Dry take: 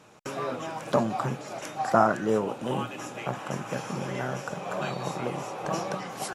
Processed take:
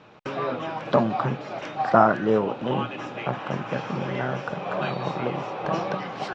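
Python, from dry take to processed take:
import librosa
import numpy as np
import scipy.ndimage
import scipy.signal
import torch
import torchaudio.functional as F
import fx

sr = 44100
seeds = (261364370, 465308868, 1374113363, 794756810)

y = scipy.signal.sosfilt(scipy.signal.butter(4, 4200.0, 'lowpass', fs=sr, output='sos'), x)
y = y * librosa.db_to_amplitude(4.0)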